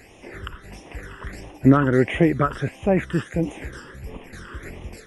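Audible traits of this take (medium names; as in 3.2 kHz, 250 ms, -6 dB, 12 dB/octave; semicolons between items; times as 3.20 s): phasing stages 12, 1.5 Hz, lowest notch 700–1500 Hz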